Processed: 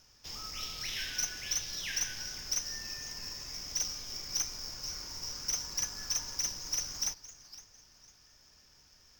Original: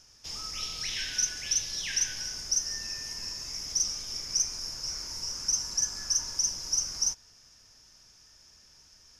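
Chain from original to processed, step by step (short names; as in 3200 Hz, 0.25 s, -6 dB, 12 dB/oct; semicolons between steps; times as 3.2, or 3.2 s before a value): median filter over 5 samples; warbling echo 0.506 s, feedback 31%, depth 177 cents, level -17 dB; gain -2 dB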